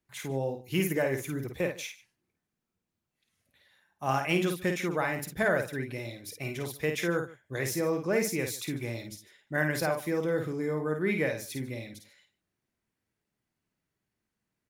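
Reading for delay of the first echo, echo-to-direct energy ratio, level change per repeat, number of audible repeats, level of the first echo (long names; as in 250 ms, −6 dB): 52 ms, −5.5 dB, repeats not evenly spaced, 2, −5.5 dB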